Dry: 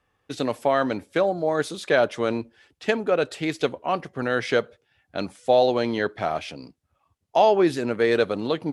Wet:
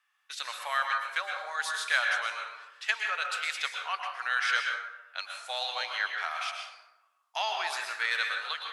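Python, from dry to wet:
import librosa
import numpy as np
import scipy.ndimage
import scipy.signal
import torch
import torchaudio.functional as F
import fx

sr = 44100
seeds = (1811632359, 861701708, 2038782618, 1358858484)

y = scipy.signal.sosfilt(scipy.signal.butter(4, 1200.0, 'highpass', fs=sr, output='sos'), x)
y = fx.rev_plate(y, sr, seeds[0], rt60_s=1.0, hf_ratio=0.5, predelay_ms=100, drr_db=2.0)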